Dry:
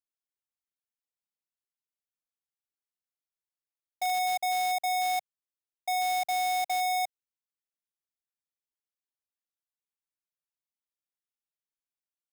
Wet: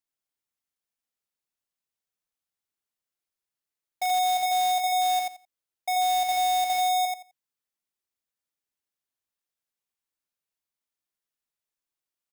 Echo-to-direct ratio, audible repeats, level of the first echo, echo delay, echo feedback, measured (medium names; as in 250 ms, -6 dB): -3.5 dB, 3, -3.5 dB, 86 ms, 17%